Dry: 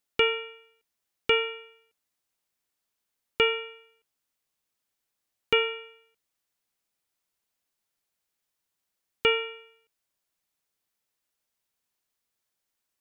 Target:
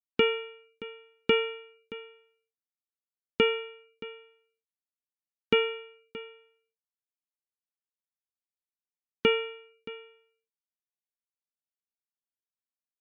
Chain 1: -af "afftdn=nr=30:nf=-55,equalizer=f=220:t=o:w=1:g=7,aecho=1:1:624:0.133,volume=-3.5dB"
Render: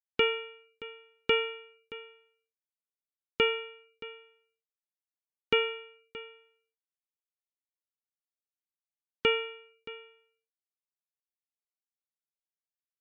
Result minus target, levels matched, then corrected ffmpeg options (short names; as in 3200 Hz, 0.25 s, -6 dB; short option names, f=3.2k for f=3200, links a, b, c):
250 Hz band -7.0 dB
-af "afftdn=nr=30:nf=-55,equalizer=f=220:t=o:w=1:g=19,aecho=1:1:624:0.133,volume=-3.5dB"